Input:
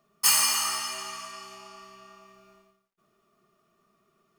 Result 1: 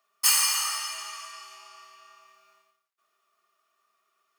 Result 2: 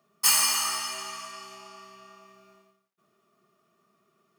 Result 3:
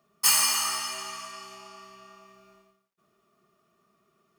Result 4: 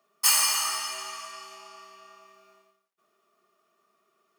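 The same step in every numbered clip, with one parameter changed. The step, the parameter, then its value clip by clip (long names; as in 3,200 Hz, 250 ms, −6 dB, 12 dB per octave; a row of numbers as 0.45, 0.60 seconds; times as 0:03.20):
high-pass filter, corner frequency: 1,000, 110, 43, 390 Hertz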